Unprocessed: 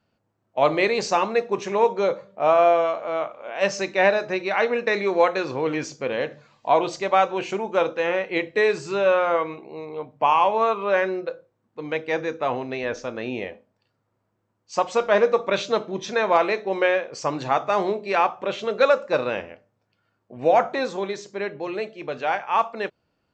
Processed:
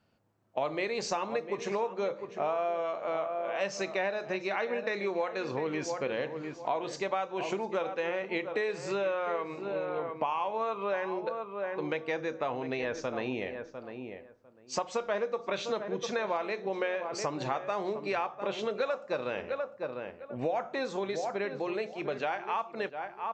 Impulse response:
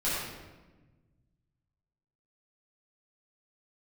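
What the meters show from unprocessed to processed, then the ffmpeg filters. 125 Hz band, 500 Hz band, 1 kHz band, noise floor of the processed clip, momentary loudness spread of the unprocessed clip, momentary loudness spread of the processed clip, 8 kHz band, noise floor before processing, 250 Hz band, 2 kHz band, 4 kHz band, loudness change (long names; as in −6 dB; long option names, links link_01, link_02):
−6.5 dB, −10.0 dB, −11.5 dB, −52 dBFS, 11 LU, 5 LU, −5.5 dB, −74 dBFS, −7.5 dB, −10.0 dB, −8.5 dB, −10.5 dB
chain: -filter_complex "[0:a]asplit=2[link_01][link_02];[link_02]adelay=700,lowpass=frequency=1800:poles=1,volume=-12dB,asplit=2[link_03][link_04];[link_04]adelay=700,lowpass=frequency=1800:poles=1,volume=0.17[link_05];[link_03][link_05]amix=inputs=2:normalize=0[link_06];[link_01][link_06]amix=inputs=2:normalize=0,acompressor=threshold=-30dB:ratio=5"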